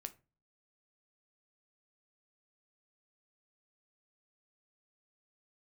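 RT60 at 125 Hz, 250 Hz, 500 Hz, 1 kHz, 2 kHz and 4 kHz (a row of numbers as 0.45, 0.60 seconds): 0.55, 0.45, 0.35, 0.30, 0.25, 0.20 seconds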